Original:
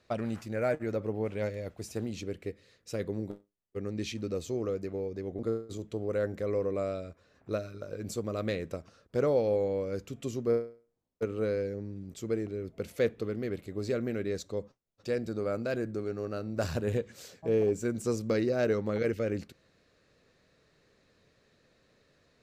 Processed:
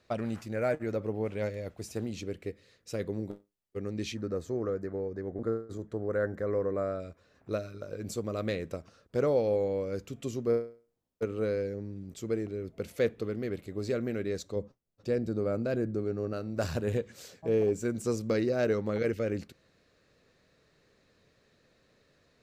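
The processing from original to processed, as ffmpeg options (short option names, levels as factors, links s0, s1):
-filter_complex "[0:a]asettb=1/sr,asplit=3[s0][s1][s2];[s0]atrim=end=4.154[s3];[s1]atrim=start=4.15:end=7,asetpts=PTS-STARTPTS,afade=t=in:d=0.004:c=qsin,afade=t=out:st=2.846:d=0.004:c=qsin,highshelf=f=2100:t=q:w=3:g=-7[s4];[s2]atrim=start=6.996[s5];[s3][s4]acrossfade=d=0.004:c1=hsin:c2=qsin[s6];[s6][s5]acrossfade=d=0.004:c1=qsin:c2=hsin,asettb=1/sr,asplit=3[s7][s8][s9];[s7]atrim=end=14.564[s10];[s8]atrim=start=14.56:end=16.33,asetpts=PTS-STARTPTS,afade=t=in:d=0.004:c=qsin,afade=t=out:st=1.766:d=0.004:c=qsin,tiltshelf=f=660:g=4.5[s11];[s9]atrim=start=16.326[s12];[s10][s11]acrossfade=d=0.004:c1=hsin:c2=qsin[s13];[s13][s12]acrossfade=d=0.004:c1=qsin:c2=hsin"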